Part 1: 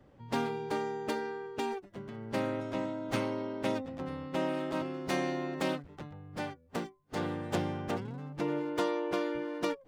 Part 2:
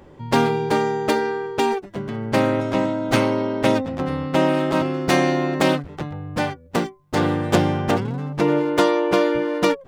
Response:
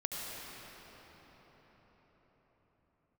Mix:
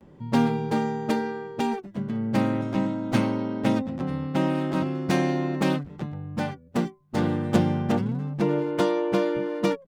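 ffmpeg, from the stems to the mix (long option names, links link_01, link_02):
-filter_complex "[0:a]afwtdn=0.0141,volume=-4dB[link_01];[1:a]adelay=8.8,volume=-9dB[link_02];[link_01][link_02]amix=inputs=2:normalize=0,equalizer=frequency=190:width_type=o:width=0.97:gain=11.5"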